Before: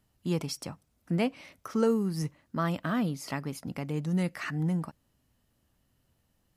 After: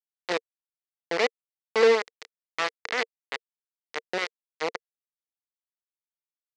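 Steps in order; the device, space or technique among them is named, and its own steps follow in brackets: hand-held game console (bit-crush 4-bit; speaker cabinet 420–5800 Hz, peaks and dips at 460 Hz +10 dB, 2000 Hz +8 dB, 4400 Hz +3 dB)

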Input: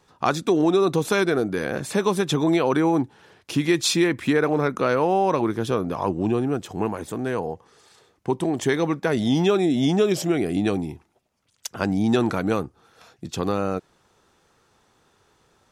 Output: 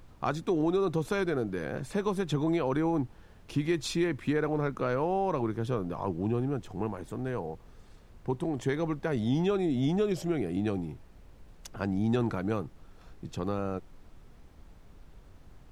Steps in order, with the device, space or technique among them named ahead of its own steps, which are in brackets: car interior (bell 120 Hz +6.5 dB 0.74 oct; high shelf 2800 Hz -7 dB; brown noise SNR 19 dB); gain -8.5 dB

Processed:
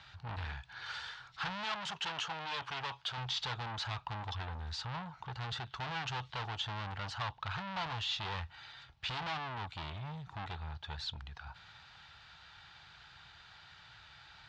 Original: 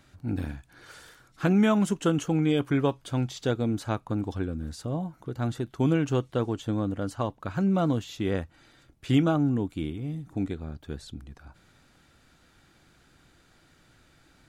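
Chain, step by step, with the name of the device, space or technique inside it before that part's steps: scooped metal amplifier (tube stage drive 38 dB, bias 0.35; speaker cabinet 85–4200 Hz, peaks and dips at 230 Hz -4 dB, 540 Hz -6 dB, 870 Hz +8 dB, 2200 Hz -4 dB; passive tone stack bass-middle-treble 10-0-10); 1.64–3.18 low shelf 150 Hz -12 dB; gain +14 dB

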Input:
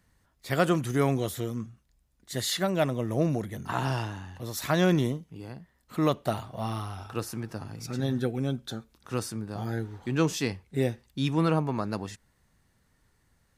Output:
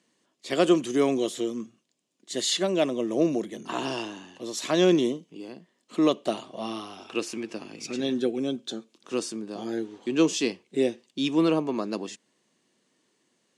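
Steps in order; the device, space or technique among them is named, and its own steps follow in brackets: 7.07–8.14 bell 2400 Hz +8.5 dB 0.7 oct; television speaker (speaker cabinet 220–8800 Hz, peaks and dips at 350 Hz +5 dB, 840 Hz -7 dB, 1400 Hz -9 dB, 1900 Hz -5 dB, 3000 Hz +5 dB, 6900 Hz +3 dB); gain +3 dB

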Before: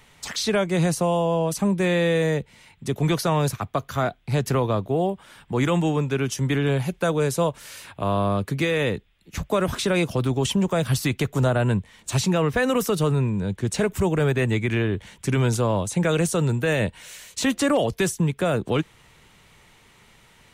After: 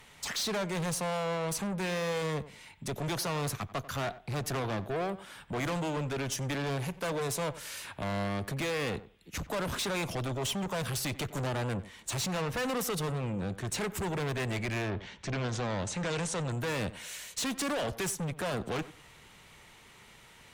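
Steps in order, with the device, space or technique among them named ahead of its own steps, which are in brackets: rockabilly slapback (tube stage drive 29 dB, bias 0.25; tape echo 91 ms, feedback 22%, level -13.5 dB, low-pass 1500 Hz); 14.9–16.5 LPF 5200 Hz -> 9200 Hz 24 dB/oct; low shelf 340 Hz -3.5 dB

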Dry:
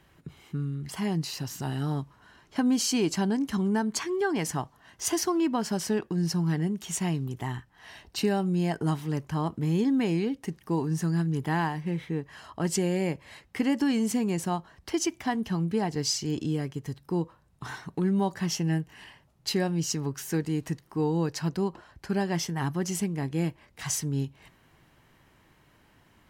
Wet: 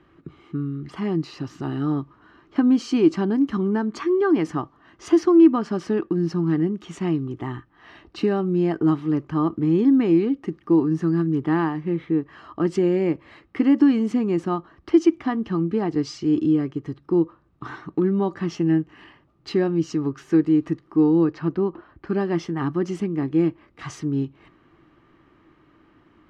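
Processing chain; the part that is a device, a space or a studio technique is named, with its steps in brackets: 21.24–22.07 Bessel low-pass 3200 Hz, order 2; inside a cardboard box (LPF 3200 Hz 12 dB/oct; small resonant body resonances 320/1200 Hz, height 14 dB, ringing for 35 ms)

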